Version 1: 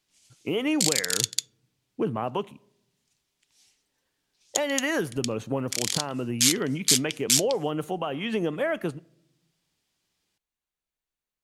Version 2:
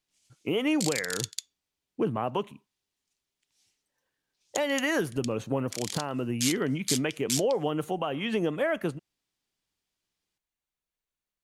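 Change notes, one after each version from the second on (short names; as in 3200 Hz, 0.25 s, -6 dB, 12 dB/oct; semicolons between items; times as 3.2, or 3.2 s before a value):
background -8.5 dB; reverb: off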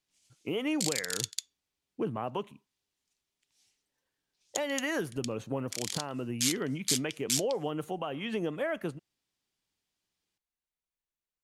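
speech -5.0 dB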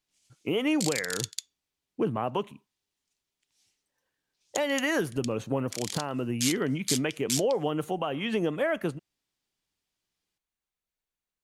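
speech +5.0 dB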